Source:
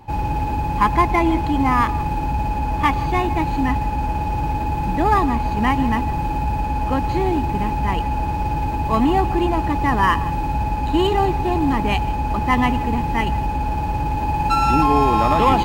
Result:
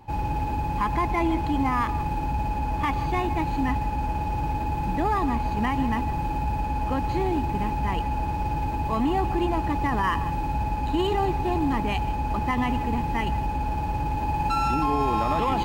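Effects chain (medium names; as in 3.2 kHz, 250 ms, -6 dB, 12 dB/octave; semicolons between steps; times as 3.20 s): peak limiter -10 dBFS, peak gain reduction 6.5 dB; trim -5 dB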